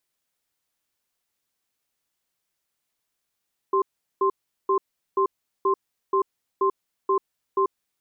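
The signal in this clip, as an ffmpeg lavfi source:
-f lavfi -i "aevalsrc='0.0944*(sin(2*PI*389*t)+sin(2*PI*1050*t))*clip(min(mod(t,0.48),0.09-mod(t,0.48))/0.005,0,1)':d=3.97:s=44100"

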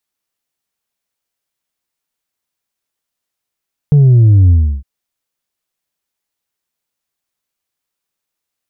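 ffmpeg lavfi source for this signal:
-f lavfi -i "aevalsrc='0.596*clip((0.91-t)/0.33,0,1)*tanh(1.33*sin(2*PI*150*0.91/log(65/150)*(exp(log(65/150)*t/0.91)-1)))/tanh(1.33)':d=0.91:s=44100"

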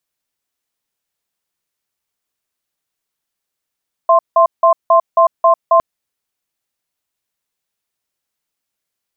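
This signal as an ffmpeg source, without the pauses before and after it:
-f lavfi -i "aevalsrc='0.355*(sin(2*PI*667*t)+sin(2*PI*1050*t))*clip(min(mod(t,0.27),0.1-mod(t,0.27))/0.005,0,1)':d=1.71:s=44100"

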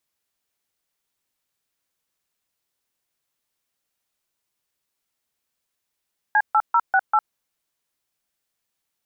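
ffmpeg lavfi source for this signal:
-f lavfi -i "aevalsrc='0.15*clip(min(mod(t,0.196),0.056-mod(t,0.196))/0.002,0,1)*(eq(floor(t/0.196),0)*(sin(2*PI*852*mod(t,0.196))+sin(2*PI*1633*mod(t,0.196)))+eq(floor(t/0.196),1)*(sin(2*PI*852*mod(t,0.196))+sin(2*PI*1336*mod(t,0.196)))+eq(floor(t/0.196),2)*(sin(2*PI*941*mod(t,0.196))+sin(2*PI*1336*mod(t,0.196)))+eq(floor(t/0.196),3)*(sin(2*PI*770*mod(t,0.196))+sin(2*PI*1477*mod(t,0.196)))+eq(floor(t/0.196),4)*(sin(2*PI*852*mod(t,0.196))+sin(2*PI*1336*mod(t,0.196))))':d=0.98:s=44100"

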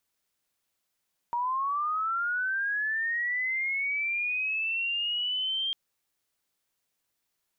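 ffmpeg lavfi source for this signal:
-f lavfi -i "aevalsrc='pow(10,(-26-1*t/4.4)/20)*sin(2*PI*(940*t+2260*t*t/(2*4.4)))':d=4.4:s=44100"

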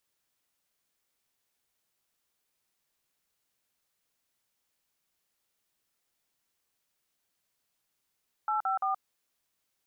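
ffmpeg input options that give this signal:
-f lavfi -i "aevalsrc='0.0355*clip(min(mod(t,0.171),0.124-mod(t,0.171))/0.002,0,1)*(eq(floor(t/0.171),0)*(sin(2*PI*852*mod(t,0.171))+sin(2*PI*1336*mod(t,0.171)))+eq(floor(t/0.171),1)*(sin(2*PI*770*mod(t,0.171))+sin(2*PI*1336*mod(t,0.171)))+eq(floor(t/0.171),2)*(sin(2*PI*770*mod(t,0.171))+sin(2*PI*1209*mod(t,0.171))))':d=0.513:s=44100"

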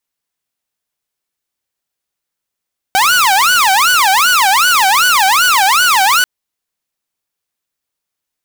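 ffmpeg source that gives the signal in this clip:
-f lavfi -i "aevalsrc='0.531*(2*mod((1123.5*t-366.5/(2*PI*2.6)*sin(2*PI*2.6*t)),1)-1)':d=3.29:s=44100"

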